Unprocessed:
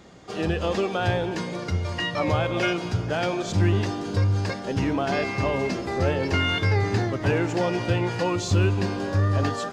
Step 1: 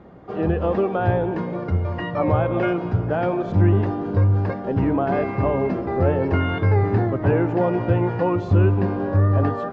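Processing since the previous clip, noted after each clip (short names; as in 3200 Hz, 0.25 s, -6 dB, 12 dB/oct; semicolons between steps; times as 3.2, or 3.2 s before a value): LPF 1200 Hz 12 dB/oct; gain +4.5 dB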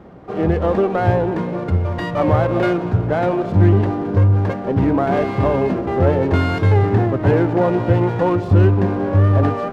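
running maximum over 5 samples; gain +4 dB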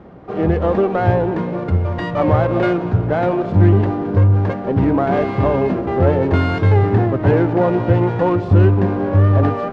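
air absorption 80 m; gain +1 dB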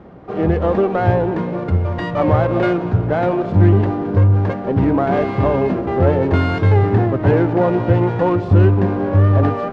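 nothing audible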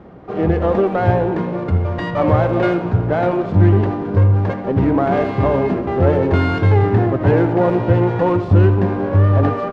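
speakerphone echo 80 ms, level -10 dB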